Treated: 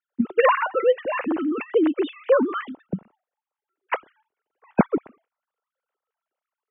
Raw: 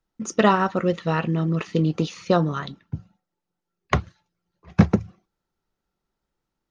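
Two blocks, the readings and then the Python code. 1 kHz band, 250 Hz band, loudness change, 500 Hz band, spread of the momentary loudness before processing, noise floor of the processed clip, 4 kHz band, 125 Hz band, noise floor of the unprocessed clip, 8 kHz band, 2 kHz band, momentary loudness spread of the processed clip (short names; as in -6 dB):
0.0 dB, -1.5 dB, 0.0 dB, +4.0 dB, 13 LU, under -85 dBFS, -5.0 dB, -13.5 dB, -83 dBFS, n/a, +1.5 dB, 13 LU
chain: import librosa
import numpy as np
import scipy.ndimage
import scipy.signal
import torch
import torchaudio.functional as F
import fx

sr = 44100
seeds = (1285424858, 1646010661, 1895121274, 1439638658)

y = fx.sine_speech(x, sr)
y = fx.air_absorb(y, sr, metres=60.0)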